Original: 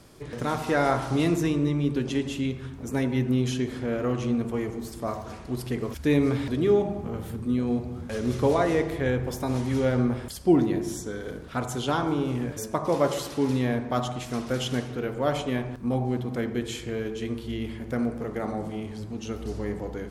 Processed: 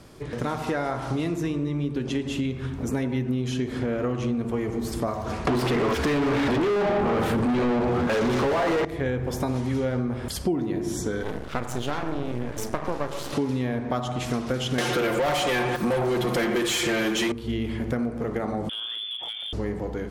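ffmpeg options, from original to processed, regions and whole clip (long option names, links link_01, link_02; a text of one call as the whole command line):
ffmpeg -i in.wav -filter_complex "[0:a]asettb=1/sr,asplit=3[link_01][link_02][link_03];[link_01]atrim=end=5.474[link_04];[link_02]atrim=start=5.47:end=8.85,asetpts=PTS-STARTPTS,afade=type=in:duration=0.004:curve=qsin,afade=type=out:start_time=3.376:duration=0.004:curve=qsin,bandreject=frequency=50:width_type=h:width=6,bandreject=frequency=100:width_type=h:width=6,bandreject=frequency=150:width_type=h:width=6,bandreject=frequency=200:width_type=h:width=6,bandreject=frequency=250:width_type=h:width=6,bandreject=frequency=300:width_type=h:width=6,bandreject=frequency=350:width_type=h:width=6,bandreject=frequency=400:width_type=h:width=6,bandreject=frequency=450:width_type=h:width=6,bandreject=frequency=500:width_type=h:width=6,asplit=2[link_05][link_06];[link_06]highpass=frequency=720:poles=1,volume=40dB,asoftclip=type=tanh:threshold=-9.5dB[link_07];[link_05][link_07]amix=inputs=2:normalize=0,lowpass=frequency=1800:poles=1,volume=-6dB[link_08];[link_03]atrim=start=8.846[link_09];[link_04][link_08]acrossfade=duration=0.004:curve1=hsin:curve2=qsin[link_10];[link_10][link_09]acrossfade=duration=0.004:curve1=qsin:curve2=hsin,asettb=1/sr,asplit=3[link_11][link_12][link_13];[link_11]atrim=end=11.234[link_14];[link_12]atrim=start=11.23:end=13.33,asetpts=PTS-STARTPTS,afade=type=in:duration=0.004:curve=qsin,afade=type=out:start_time=2.096:duration=0.004:curve=qsin,asplit=2[link_15][link_16];[link_16]adelay=34,volume=-13.5dB[link_17];[link_15][link_17]amix=inputs=2:normalize=0,atrim=end_sample=92610,aeval=exprs='max(val(0),0)':channel_layout=same[link_18];[link_13]atrim=start=13.326[link_19];[link_14][link_18]acrossfade=duration=0.004:curve1=hsin:curve2=qsin[link_20];[link_20][link_19]acrossfade=duration=0.004:curve1=qsin:curve2=hsin,asettb=1/sr,asplit=3[link_21][link_22][link_23];[link_21]atrim=end=14.784[link_24];[link_22]atrim=start=14.78:end=17.32,asetpts=PTS-STARTPTS,afade=type=in:duration=0.004:curve=qsin,afade=type=out:start_time=2.536:duration=0.004:curve=qsin,aemphasis=mode=production:type=50fm,aecho=1:1:5.7:0.81,atrim=end_sample=112014,asplit=2[link_25][link_26];[link_26]highpass=frequency=720:poles=1,volume=27dB,asoftclip=type=tanh:threshold=-12dB[link_27];[link_25][link_27]amix=inputs=2:normalize=0,lowpass=frequency=4600:poles=1,volume=-6dB[link_28];[link_23]atrim=start=17.316[link_29];[link_24][link_28]acrossfade=duration=0.004:curve1=hsin:curve2=qsin[link_30];[link_30][link_29]acrossfade=duration=0.004:curve1=qsin:curve2=hsin,asettb=1/sr,asplit=3[link_31][link_32][link_33];[link_31]atrim=end=18.694[link_34];[link_32]atrim=start=18.69:end=19.53,asetpts=PTS-STARTPTS,afade=type=in:duration=0.004:curve=qsin,afade=type=out:start_time=0.836:duration=0.004:curve=qsin,lowpass=frequency=3100:width_type=q:width=0.5098,lowpass=frequency=3100:width_type=q:width=0.6013,lowpass=frequency=3100:width_type=q:width=0.9,lowpass=frequency=3100:width_type=q:width=2.563,afreqshift=-3600,acompressor=threshold=-33dB:ratio=16:attack=3.2:release=140:knee=1:detection=peak,asoftclip=type=hard:threshold=-31.5dB[link_35];[link_33]atrim=start=19.526[link_36];[link_34][link_35]acrossfade=duration=0.004:curve1=hsin:curve2=qsin[link_37];[link_37][link_36]acrossfade=duration=0.004:curve1=qsin:curve2=hsin,dynaudnorm=framelen=640:gausssize=9:maxgain=9dB,highshelf=frequency=5700:gain=-5.5,acompressor=threshold=-28dB:ratio=6,volume=4dB" out.wav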